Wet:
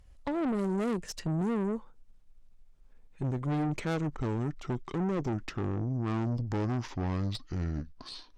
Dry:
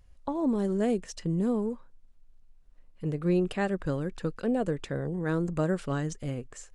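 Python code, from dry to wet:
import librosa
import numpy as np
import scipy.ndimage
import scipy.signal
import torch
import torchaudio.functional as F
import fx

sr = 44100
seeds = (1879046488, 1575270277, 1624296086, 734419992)

y = fx.speed_glide(x, sr, from_pct=103, to_pct=58)
y = fx.tube_stage(y, sr, drive_db=32.0, bias=0.6)
y = y * librosa.db_to_amplitude(4.5)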